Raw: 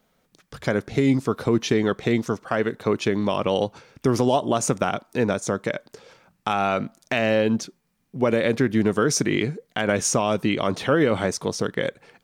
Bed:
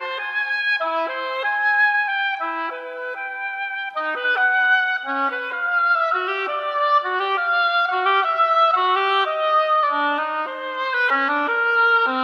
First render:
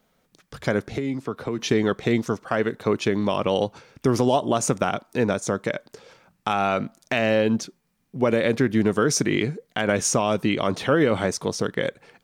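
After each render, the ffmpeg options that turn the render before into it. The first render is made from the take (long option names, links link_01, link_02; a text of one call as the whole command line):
ffmpeg -i in.wav -filter_complex "[0:a]asettb=1/sr,asplit=3[link_01][link_02][link_03];[link_01]atrim=end=0.974[link_04];[link_02]atrim=start=0.97:end=1.59,asetpts=PTS-STARTPTS,afade=type=in:duration=0.004:curve=qsin,afade=type=out:start_time=0.616:duration=0.004:curve=qsin,acrossover=split=200|1600|3500[link_05][link_06][link_07][link_08];[link_05]acompressor=threshold=-38dB:ratio=3[link_09];[link_06]acompressor=threshold=-28dB:ratio=3[link_10];[link_07]acompressor=threshold=-45dB:ratio=3[link_11];[link_08]acompressor=threshold=-60dB:ratio=3[link_12];[link_09][link_10][link_11][link_12]amix=inputs=4:normalize=0[link_13];[link_03]atrim=start=1.586[link_14];[link_04][link_13]acrossfade=duration=0.004:curve1=hsin:curve2=qsin[link_15];[link_15][link_14]acrossfade=duration=0.004:curve1=qsin:curve2=hsin" out.wav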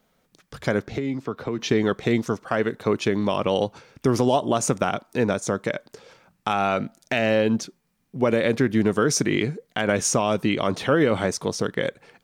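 ffmpeg -i in.wav -filter_complex "[0:a]asettb=1/sr,asplit=3[link_01][link_02][link_03];[link_01]atrim=end=0.804[link_04];[link_02]atrim=start=0.8:end=1.81,asetpts=PTS-STARTPTS,afade=type=in:duration=0.004:curve=qsin,afade=type=out:start_time=1.006:duration=0.004:curve=qsin,equalizer=frequency=10000:width=1.6:gain=-10[link_05];[link_03]atrim=start=1.806[link_06];[link_04][link_05]acrossfade=duration=0.004:curve1=hsin:curve2=qsin[link_07];[link_07][link_06]acrossfade=duration=0.004:curve1=qsin:curve2=hsin,asettb=1/sr,asplit=3[link_08][link_09][link_10];[link_08]atrim=end=6.764[link_11];[link_09]atrim=start=6.76:end=7.26,asetpts=PTS-STARTPTS,afade=type=in:duration=0.004:curve=qsin,afade=type=out:start_time=0.496:duration=0.004:curve=qsin,bandreject=frequency=1100:width=5.3[link_12];[link_10]atrim=start=7.256[link_13];[link_11][link_12]acrossfade=duration=0.004:curve1=hsin:curve2=qsin[link_14];[link_14][link_13]acrossfade=duration=0.004:curve1=qsin:curve2=hsin" out.wav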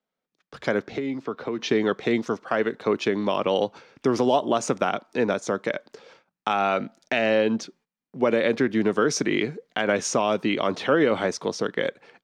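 ffmpeg -i in.wav -filter_complex "[0:a]agate=range=-18dB:threshold=-53dB:ratio=16:detection=peak,acrossover=split=190 6300:gain=0.2 1 0.141[link_01][link_02][link_03];[link_01][link_02][link_03]amix=inputs=3:normalize=0" out.wav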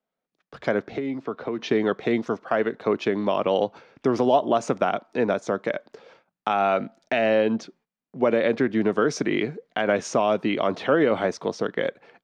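ffmpeg -i in.wav -af "lowpass=frequency=3000:poles=1,equalizer=frequency=670:width=4.4:gain=4" out.wav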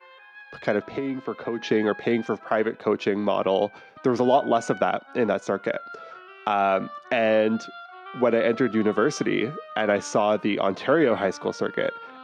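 ffmpeg -i in.wav -i bed.wav -filter_complex "[1:a]volume=-22.5dB[link_01];[0:a][link_01]amix=inputs=2:normalize=0" out.wav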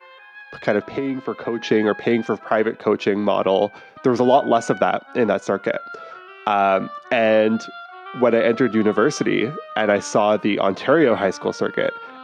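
ffmpeg -i in.wav -af "volume=4.5dB" out.wav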